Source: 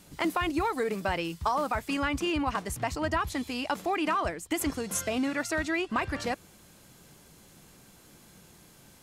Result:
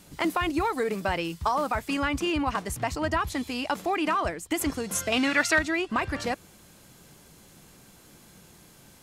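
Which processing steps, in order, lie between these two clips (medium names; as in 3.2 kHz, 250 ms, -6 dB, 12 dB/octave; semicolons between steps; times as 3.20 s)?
5.12–5.59 s: peaking EQ 2.7 kHz +10.5 dB 2.8 oct; trim +2 dB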